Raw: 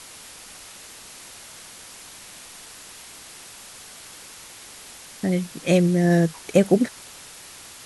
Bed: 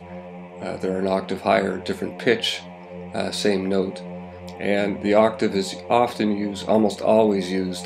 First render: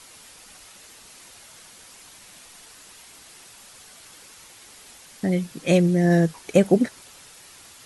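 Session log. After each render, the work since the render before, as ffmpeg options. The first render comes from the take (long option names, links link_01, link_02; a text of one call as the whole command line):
ffmpeg -i in.wav -af "afftdn=noise_reduction=6:noise_floor=-43" out.wav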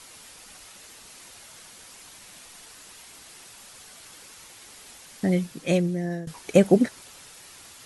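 ffmpeg -i in.wav -filter_complex "[0:a]asplit=2[link_01][link_02];[link_01]atrim=end=6.27,asetpts=PTS-STARTPTS,afade=type=out:start_time=5.35:duration=0.92:silence=0.0841395[link_03];[link_02]atrim=start=6.27,asetpts=PTS-STARTPTS,afade=type=in:duration=0.004:curve=hsin:silence=0.0841395[link_04];[link_03][link_04]concat=n=2:v=0:a=1" out.wav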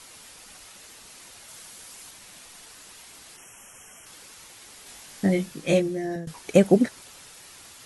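ffmpeg -i in.wav -filter_complex "[0:a]asettb=1/sr,asplit=3[link_01][link_02][link_03];[link_01]atrim=end=1.484[link_04];[link_02]atrim=start=1.48:end=2.11,asetpts=PTS-STARTPTS,afade=type=in:duration=0.004:curve=qsin,afade=type=out:start_time=0.626:duration=0.004:curve=qsin,highshelf=frequency=6900:gain=5.5[link_05];[link_03]atrim=start=2.106[link_06];[link_04][link_05]acrossfade=duration=0.004:curve1=hsin:curve2=qsin[link_07];[link_07][link_06]acrossfade=duration=0.004:curve1=qsin:curve2=hsin,asplit=3[link_08][link_09][link_10];[link_08]afade=type=out:start_time=3.36:duration=0.02[link_11];[link_09]asuperstop=centerf=4200:order=20:qfactor=2,afade=type=in:start_time=3.36:duration=0.02,afade=type=out:start_time=4.05:duration=0.02[link_12];[link_10]afade=type=in:start_time=4.05:duration=0.02[link_13];[link_11][link_12][link_13]amix=inputs=3:normalize=0,asettb=1/sr,asplit=3[link_14][link_15][link_16];[link_14]atrim=end=4.844[link_17];[link_15]atrim=start=4.84:end=6.16,asetpts=PTS-STARTPTS,afade=type=in:duration=0.004:curve=qsin,afade=type=out:start_time=1.316:duration=0.004:curve=qsin,asplit=2[link_18][link_19];[link_19]adelay=20,volume=-3dB[link_20];[link_18][link_20]amix=inputs=2:normalize=0,atrim=end_sample=58212[link_21];[link_16]atrim=start=6.156[link_22];[link_17][link_21]acrossfade=duration=0.004:curve1=hsin:curve2=qsin[link_23];[link_23][link_22]acrossfade=duration=0.004:curve1=qsin:curve2=hsin" out.wav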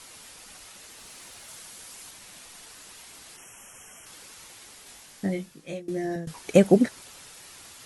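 ffmpeg -i in.wav -filter_complex "[0:a]asettb=1/sr,asplit=3[link_01][link_02][link_03];[link_01]atrim=end=0.984[link_04];[link_02]atrim=start=0.98:end=1.55,asetpts=PTS-STARTPTS,afade=type=in:duration=0.004:curve=qsin,afade=type=out:start_time=0.566:duration=0.004:curve=qsin,aeval=exprs='val(0)+0.5*0.00119*sgn(val(0))':channel_layout=same[link_05];[link_03]atrim=start=1.546[link_06];[link_04][link_05]acrossfade=duration=0.004:curve1=hsin:curve2=qsin[link_07];[link_07][link_06]acrossfade=duration=0.004:curve1=qsin:curve2=hsin,asplit=2[link_08][link_09];[link_08]atrim=end=5.88,asetpts=PTS-STARTPTS,afade=type=out:start_time=4.55:duration=1.33:silence=0.0841395[link_10];[link_09]atrim=start=5.88,asetpts=PTS-STARTPTS,afade=type=in:duration=0.004:curve=hsin:silence=0.0841395[link_11];[link_10][link_11]concat=n=2:v=0:a=1" out.wav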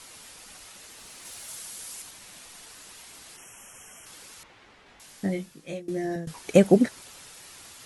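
ffmpeg -i in.wav -filter_complex "[0:a]asettb=1/sr,asplit=3[link_01][link_02][link_03];[link_01]atrim=end=1.254[link_04];[link_02]atrim=start=1.25:end=2.02,asetpts=PTS-STARTPTS,afade=type=in:duration=0.004:curve=qsin,afade=type=out:start_time=0.766:duration=0.004:curve=qsin,highshelf=frequency=5200:gain=7[link_05];[link_03]atrim=start=2.016[link_06];[link_04][link_05]acrossfade=duration=0.004:curve1=hsin:curve2=qsin[link_07];[link_07][link_06]acrossfade=duration=0.004:curve1=qsin:curve2=hsin,asettb=1/sr,asplit=3[link_08][link_09][link_10];[link_08]atrim=end=4.434[link_11];[link_09]atrim=start=4.43:end=5,asetpts=PTS-STARTPTS,afade=type=in:duration=0.004:curve=qsin,afade=type=out:start_time=0.566:duration=0.004:curve=qsin,lowpass=2400[link_12];[link_10]atrim=start=4.996[link_13];[link_11][link_12]acrossfade=duration=0.004:curve1=hsin:curve2=qsin[link_14];[link_14][link_13]acrossfade=duration=0.004:curve1=qsin:curve2=hsin" out.wav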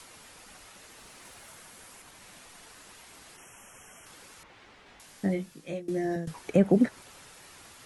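ffmpeg -i in.wav -filter_complex "[0:a]acrossover=split=180|2400[link_01][link_02][link_03];[link_02]alimiter=limit=-13.5dB:level=0:latency=1:release=56[link_04];[link_03]acompressor=threshold=-52dB:ratio=6[link_05];[link_01][link_04][link_05]amix=inputs=3:normalize=0" out.wav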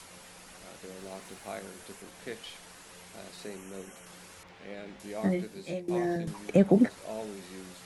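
ffmpeg -i in.wav -i bed.wav -filter_complex "[1:a]volume=-22dB[link_01];[0:a][link_01]amix=inputs=2:normalize=0" out.wav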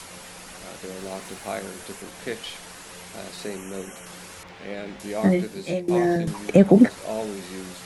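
ffmpeg -i in.wav -af "volume=9dB,alimiter=limit=-3dB:level=0:latency=1" out.wav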